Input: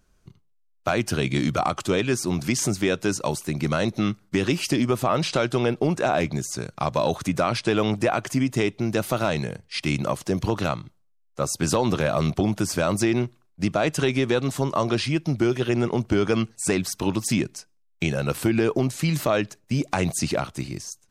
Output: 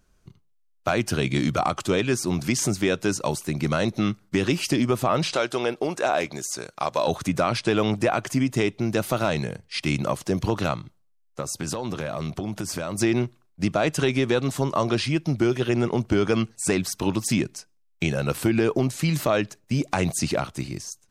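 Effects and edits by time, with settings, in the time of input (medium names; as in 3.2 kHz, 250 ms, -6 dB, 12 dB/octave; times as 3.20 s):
5.34–7.08 s: tone controls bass -14 dB, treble +2 dB
11.40–12.98 s: compression 4:1, threshold -26 dBFS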